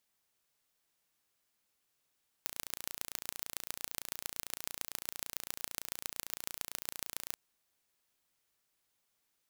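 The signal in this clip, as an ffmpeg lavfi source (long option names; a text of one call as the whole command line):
ffmpeg -f lavfi -i "aevalsrc='0.398*eq(mod(n,1526),0)*(0.5+0.5*eq(mod(n,6104),0))':duration=4.91:sample_rate=44100" out.wav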